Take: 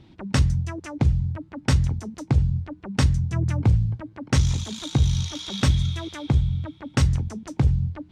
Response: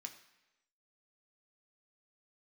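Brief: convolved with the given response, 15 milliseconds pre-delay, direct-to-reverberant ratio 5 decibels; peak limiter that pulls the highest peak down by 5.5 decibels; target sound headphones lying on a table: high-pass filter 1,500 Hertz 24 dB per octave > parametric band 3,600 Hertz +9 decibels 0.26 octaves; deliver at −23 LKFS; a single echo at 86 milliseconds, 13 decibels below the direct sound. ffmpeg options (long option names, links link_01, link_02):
-filter_complex "[0:a]alimiter=limit=-16dB:level=0:latency=1,aecho=1:1:86:0.224,asplit=2[link_01][link_02];[1:a]atrim=start_sample=2205,adelay=15[link_03];[link_02][link_03]afir=irnorm=-1:irlink=0,volume=-0.5dB[link_04];[link_01][link_04]amix=inputs=2:normalize=0,highpass=frequency=1500:width=0.5412,highpass=frequency=1500:width=1.3066,equalizer=frequency=3600:width_type=o:width=0.26:gain=9,volume=9.5dB"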